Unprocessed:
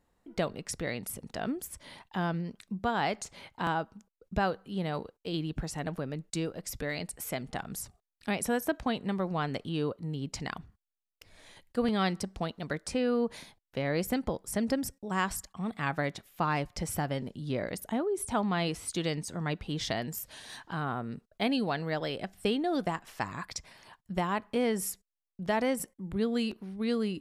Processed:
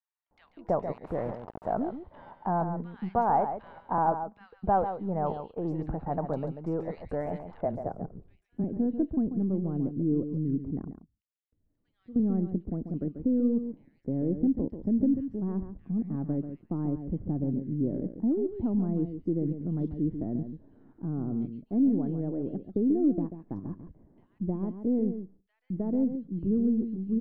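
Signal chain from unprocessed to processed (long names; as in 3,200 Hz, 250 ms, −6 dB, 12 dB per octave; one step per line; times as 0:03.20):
gain on one half-wave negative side −3 dB
0:10.59–0:11.85: guitar amp tone stack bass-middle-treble 5-5-5
in parallel at +2 dB: output level in coarse steps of 21 dB
0:07.34–0:08.33: on the sum: frequency shifter −17 Hz
multiband delay without the direct sound highs, lows 310 ms, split 2,200 Hz
0:00.93–0:01.74: bit-depth reduction 6 bits, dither none
low-pass filter sweep 850 Hz → 300 Hz, 0:07.55–0:08.34
on a send: single-tap delay 139 ms −9 dB
on the sum: level −1 dB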